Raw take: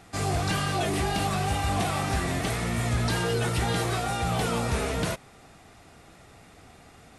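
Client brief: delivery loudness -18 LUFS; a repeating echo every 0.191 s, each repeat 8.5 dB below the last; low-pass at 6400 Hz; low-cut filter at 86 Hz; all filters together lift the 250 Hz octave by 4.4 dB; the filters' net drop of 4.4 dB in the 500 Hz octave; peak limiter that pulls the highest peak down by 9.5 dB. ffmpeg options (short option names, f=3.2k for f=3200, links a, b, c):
-af "highpass=86,lowpass=6.4k,equalizer=f=250:t=o:g=8.5,equalizer=f=500:t=o:g=-9,alimiter=level_in=0.5dB:limit=-24dB:level=0:latency=1,volume=-0.5dB,aecho=1:1:191|382|573|764:0.376|0.143|0.0543|0.0206,volume=14.5dB"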